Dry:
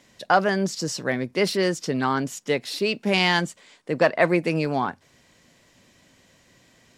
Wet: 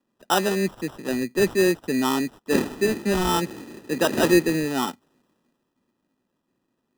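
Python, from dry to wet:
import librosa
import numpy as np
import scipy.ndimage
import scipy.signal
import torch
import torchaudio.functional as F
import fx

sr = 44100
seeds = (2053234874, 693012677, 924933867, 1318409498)

y = fx.dmg_wind(x, sr, seeds[0], corner_hz=440.0, level_db=-27.0, at=(2.51, 4.54), fade=0.02)
y = scipy.signal.sosfilt(scipy.signal.butter(2, 120.0, 'highpass', fs=sr, output='sos'), y)
y = fx.high_shelf(y, sr, hz=7300.0, db=-11.0)
y = fx.small_body(y, sr, hz=(250.0, 350.0, 870.0, 3200.0), ring_ms=25, db=11)
y = fx.sample_hold(y, sr, seeds[1], rate_hz=2200.0, jitter_pct=0)
y = fx.band_widen(y, sr, depth_pct=40)
y = F.gain(torch.from_numpy(y), -7.5).numpy()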